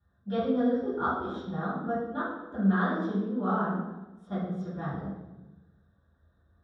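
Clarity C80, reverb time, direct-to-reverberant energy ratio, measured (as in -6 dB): 3.5 dB, 1.1 s, -16.5 dB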